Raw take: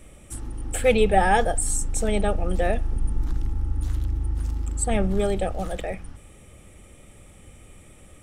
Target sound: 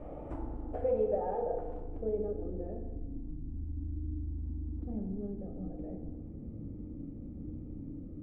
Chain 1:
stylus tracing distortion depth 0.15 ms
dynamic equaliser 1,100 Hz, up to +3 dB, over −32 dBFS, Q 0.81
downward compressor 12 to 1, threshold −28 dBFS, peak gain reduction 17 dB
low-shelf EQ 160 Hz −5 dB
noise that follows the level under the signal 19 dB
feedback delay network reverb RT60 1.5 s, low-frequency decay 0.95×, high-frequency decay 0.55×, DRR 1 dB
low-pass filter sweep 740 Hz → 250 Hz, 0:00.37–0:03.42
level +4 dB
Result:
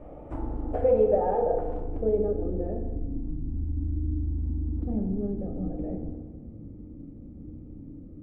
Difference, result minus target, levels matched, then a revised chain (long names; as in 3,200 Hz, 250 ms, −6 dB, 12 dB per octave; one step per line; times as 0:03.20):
downward compressor: peak gain reduction −8.5 dB
stylus tracing distortion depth 0.15 ms
dynamic equaliser 1,100 Hz, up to +3 dB, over −32 dBFS, Q 0.81
downward compressor 12 to 1, threshold −37.5 dBFS, peak gain reduction 26 dB
low-shelf EQ 160 Hz −5 dB
noise that follows the level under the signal 19 dB
feedback delay network reverb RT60 1.5 s, low-frequency decay 0.95×, high-frequency decay 0.55×, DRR 1 dB
low-pass filter sweep 740 Hz → 250 Hz, 0:00.37–0:03.42
level +4 dB